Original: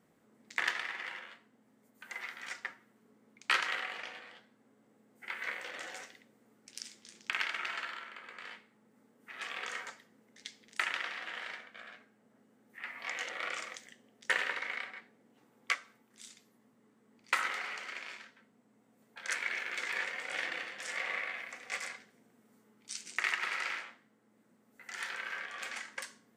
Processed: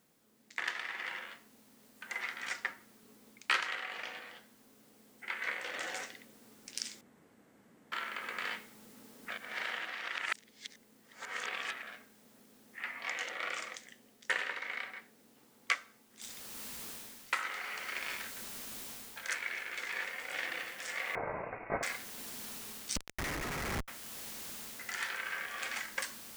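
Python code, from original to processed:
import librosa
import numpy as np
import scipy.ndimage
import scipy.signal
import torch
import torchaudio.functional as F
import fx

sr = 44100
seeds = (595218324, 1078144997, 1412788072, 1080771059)

y = fx.noise_floor_step(x, sr, seeds[0], at_s=16.22, before_db=-69, after_db=-55, tilt_db=0.0)
y = fx.freq_invert(y, sr, carrier_hz=2700, at=(21.15, 21.83))
y = fx.schmitt(y, sr, flips_db=-35.5, at=(22.96, 23.88))
y = fx.edit(y, sr, fx.room_tone_fill(start_s=7.01, length_s=0.91),
    fx.reverse_span(start_s=9.3, length_s=2.52), tone=tone)
y = fx.rider(y, sr, range_db=10, speed_s=0.5)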